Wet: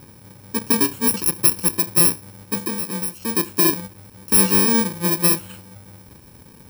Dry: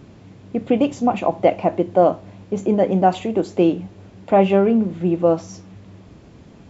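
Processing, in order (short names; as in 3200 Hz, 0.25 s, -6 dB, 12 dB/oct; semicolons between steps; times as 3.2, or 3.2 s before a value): FFT order left unsorted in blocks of 64 samples; 2.62–3.26 compressor 16:1, threshold -21 dBFS, peak gain reduction 13 dB; gain -1 dB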